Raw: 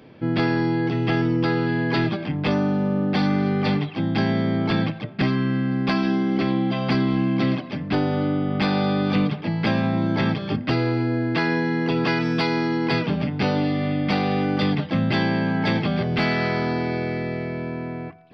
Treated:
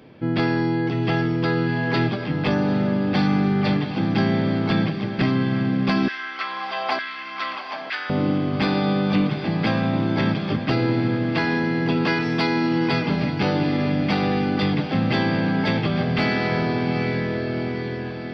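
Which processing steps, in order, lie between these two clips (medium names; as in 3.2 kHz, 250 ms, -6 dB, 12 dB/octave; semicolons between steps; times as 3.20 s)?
echo that smears into a reverb 802 ms, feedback 60%, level -9 dB; 6.08–8.10 s: LFO high-pass saw down 1.1 Hz 730–1800 Hz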